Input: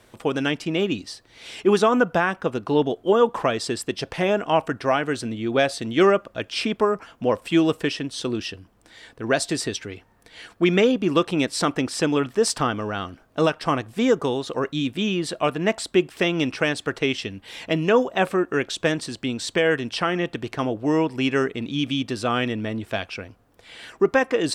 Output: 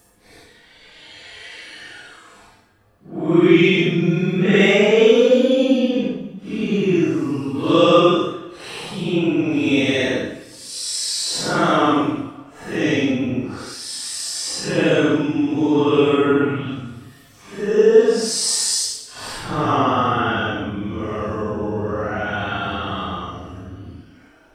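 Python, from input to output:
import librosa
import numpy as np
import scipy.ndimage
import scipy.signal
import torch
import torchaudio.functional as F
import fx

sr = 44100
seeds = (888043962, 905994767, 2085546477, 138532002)

y = fx.paulstretch(x, sr, seeds[0], factor=8.2, window_s=0.05, from_s=10.22)
y = fx.rev_double_slope(y, sr, seeds[1], early_s=0.87, late_s=2.7, knee_db=-26, drr_db=6.5)
y = F.gain(torch.from_numpy(y), 2.0).numpy()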